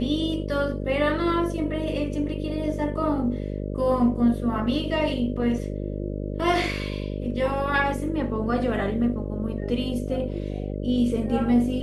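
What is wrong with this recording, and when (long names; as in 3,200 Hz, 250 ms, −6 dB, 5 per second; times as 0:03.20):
mains buzz 50 Hz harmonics 12 −30 dBFS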